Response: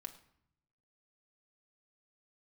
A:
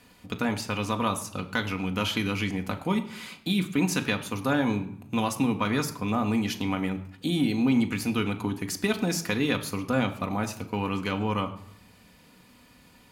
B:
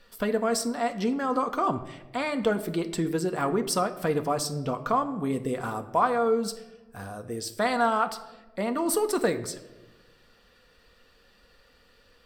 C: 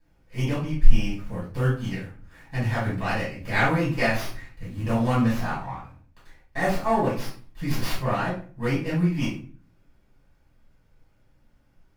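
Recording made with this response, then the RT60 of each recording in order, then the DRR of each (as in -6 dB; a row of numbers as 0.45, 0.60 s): A; 0.65, 1.1, 0.40 s; 4.0, 6.5, -11.0 dB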